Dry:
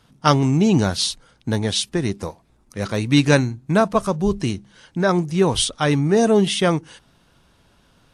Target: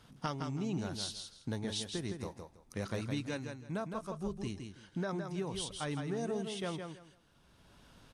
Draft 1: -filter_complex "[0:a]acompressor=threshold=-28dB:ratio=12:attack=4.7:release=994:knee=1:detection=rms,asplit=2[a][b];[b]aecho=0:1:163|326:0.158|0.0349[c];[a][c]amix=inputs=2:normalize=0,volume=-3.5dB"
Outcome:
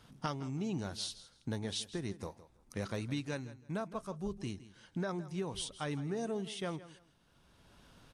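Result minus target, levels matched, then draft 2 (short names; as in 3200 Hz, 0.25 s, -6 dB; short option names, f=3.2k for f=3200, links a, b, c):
echo-to-direct -10 dB
-filter_complex "[0:a]acompressor=threshold=-28dB:ratio=12:attack=4.7:release=994:knee=1:detection=rms,asplit=2[a][b];[b]aecho=0:1:163|326|489:0.501|0.11|0.0243[c];[a][c]amix=inputs=2:normalize=0,volume=-3.5dB"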